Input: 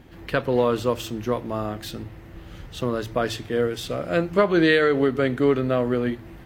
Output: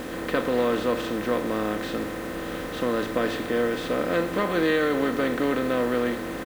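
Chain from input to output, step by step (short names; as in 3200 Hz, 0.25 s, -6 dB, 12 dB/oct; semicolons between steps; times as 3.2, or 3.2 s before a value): per-bin compression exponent 0.4; high shelf 5800 Hz -9 dB; comb 3.9 ms, depth 50%; bit-crush 6-bit; gain -8.5 dB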